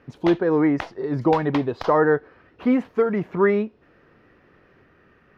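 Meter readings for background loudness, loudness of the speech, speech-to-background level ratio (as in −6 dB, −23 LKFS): −36.5 LKFS, −22.0 LKFS, 14.5 dB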